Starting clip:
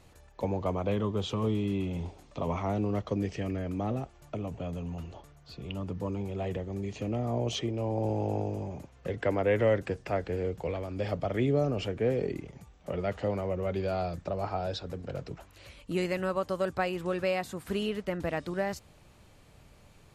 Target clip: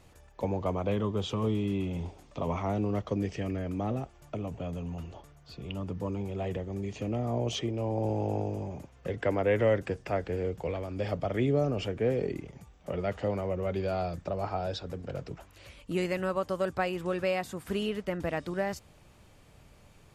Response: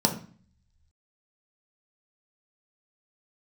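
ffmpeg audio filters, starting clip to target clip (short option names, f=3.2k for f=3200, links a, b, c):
-af "bandreject=f=4.1k:w=19"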